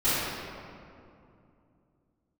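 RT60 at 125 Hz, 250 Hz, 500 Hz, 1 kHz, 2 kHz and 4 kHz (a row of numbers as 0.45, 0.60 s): 3.6, 3.4, 2.7, 2.4, 1.9, 1.3 s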